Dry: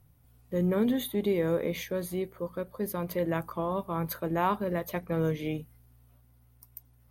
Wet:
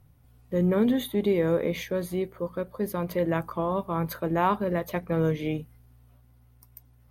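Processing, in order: treble shelf 6.3 kHz -7 dB; trim +3.5 dB

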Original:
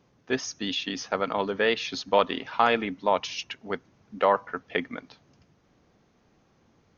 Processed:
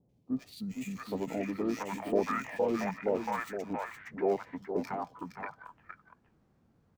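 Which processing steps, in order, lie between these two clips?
median filter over 9 samples; on a send: delay 465 ms -7.5 dB; on the sum: formant shift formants -6 st; three bands offset in time lows, highs, mids 90/680 ms, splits 750/2500 Hz; trim -5 dB

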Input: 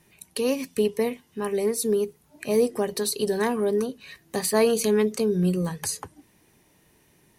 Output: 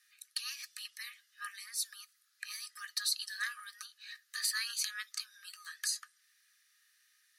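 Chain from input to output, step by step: rippled Chebyshev high-pass 1.2 kHz, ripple 9 dB

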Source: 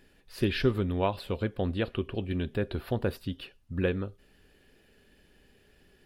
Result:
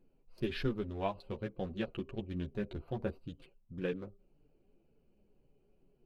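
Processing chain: local Wiener filter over 25 samples; chorus voices 6, 0.47 Hz, delay 10 ms, depth 4.8 ms; trim -4.5 dB

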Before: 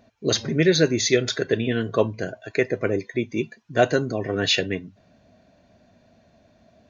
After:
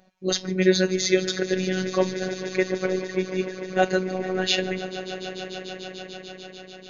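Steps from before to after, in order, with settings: echo with a slow build-up 147 ms, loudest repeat 5, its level -17 dB; robot voice 186 Hz

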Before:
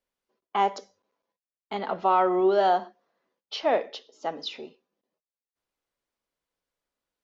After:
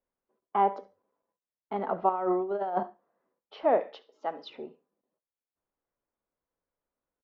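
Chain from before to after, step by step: low-pass 1.3 kHz 12 dB/octave; 2.09–2.83 s: compressor with a negative ratio -27 dBFS, ratio -0.5; 3.80–4.50 s: tilt EQ +3.5 dB/octave; feedback delay 70 ms, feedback 20%, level -20 dB

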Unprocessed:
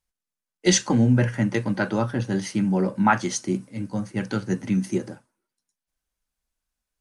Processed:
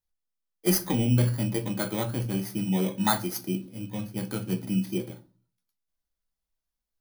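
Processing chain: bit-reversed sample order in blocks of 16 samples; simulated room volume 160 m³, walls furnished, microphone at 0.66 m; trim -6 dB

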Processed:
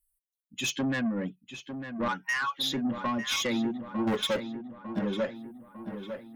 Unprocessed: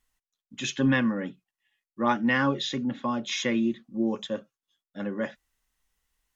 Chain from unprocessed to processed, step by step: expander on every frequency bin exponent 1.5; 2.08–2.72 s: steep high-pass 900 Hz 48 dB/octave; compression 10:1, threshold -29 dBFS, peak gain reduction 10.5 dB; 4.07–4.99 s: waveshaping leveller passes 3; saturation -32.5 dBFS, distortion -11 dB; filtered feedback delay 901 ms, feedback 54%, low-pass 2.9 kHz, level -9 dB; trim +8 dB

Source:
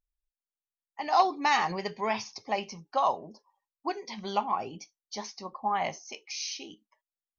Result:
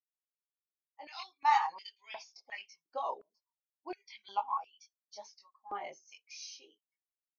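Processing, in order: expander on every frequency bin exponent 1.5; chorus voices 6, 1 Hz, delay 22 ms, depth 3 ms; step-sequenced high-pass 2.8 Hz 360–3200 Hz; trim -6.5 dB

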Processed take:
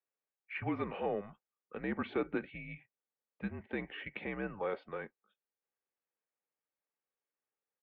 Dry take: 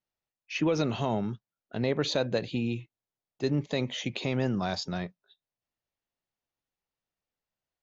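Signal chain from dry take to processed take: comb 2.9 ms, depth 30%; mistuned SSB -200 Hz 470–2600 Hz; trim -3 dB

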